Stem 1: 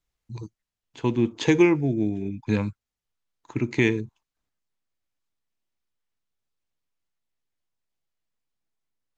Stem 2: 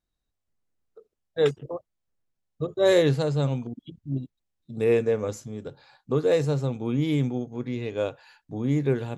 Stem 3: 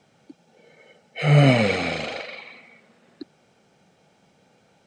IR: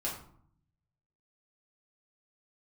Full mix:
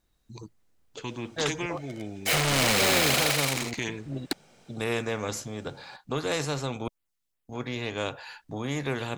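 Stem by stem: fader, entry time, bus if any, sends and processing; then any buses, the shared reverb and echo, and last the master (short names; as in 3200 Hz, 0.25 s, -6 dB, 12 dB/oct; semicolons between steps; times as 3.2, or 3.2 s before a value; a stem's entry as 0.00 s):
-14.5 dB, 0.00 s, no send, LFO notch sine 2.6 Hz 560–6400 Hz
-3.0 dB, 0.00 s, muted 6.88–7.49, no send, high shelf 5400 Hz -11.5 dB
-7.0 dB, 1.10 s, no send, sample leveller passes 3; compressor 2.5:1, threshold -14 dBFS, peak gain reduction 5 dB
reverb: off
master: high shelf 4800 Hz +8 dB; spectral compressor 2:1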